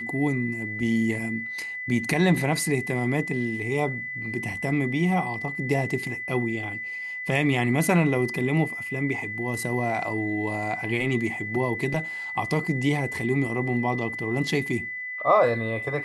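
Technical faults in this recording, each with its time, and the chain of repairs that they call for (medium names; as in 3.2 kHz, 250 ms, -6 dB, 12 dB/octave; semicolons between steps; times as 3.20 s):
whine 2 kHz -31 dBFS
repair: band-stop 2 kHz, Q 30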